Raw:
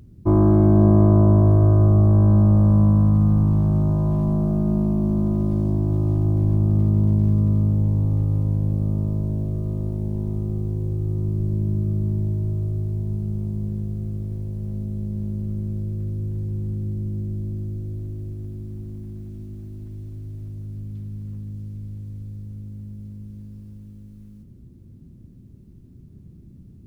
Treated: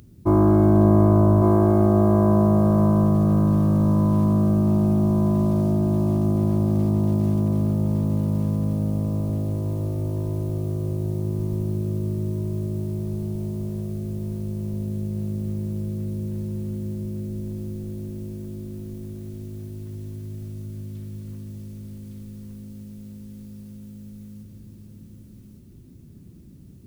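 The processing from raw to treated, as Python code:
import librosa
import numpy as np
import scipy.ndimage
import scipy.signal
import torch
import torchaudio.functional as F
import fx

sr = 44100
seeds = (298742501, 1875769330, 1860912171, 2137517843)

y = fx.tilt_eq(x, sr, slope=2.0)
y = y + 10.0 ** (-3.5 / 20.0) * np.pad(y, (int(1159 * sr / 1000.0), 0))[:len(y)]
y = F.gain(torch.from_numpy(y), 3.5).numpy()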